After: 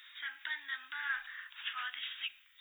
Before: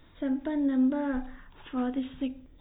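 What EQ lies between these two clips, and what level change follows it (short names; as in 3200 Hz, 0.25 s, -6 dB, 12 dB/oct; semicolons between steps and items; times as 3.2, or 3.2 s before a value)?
inverse Chebyshev high-pass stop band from 620 Hz, stop band 50 dB; +11.5 dB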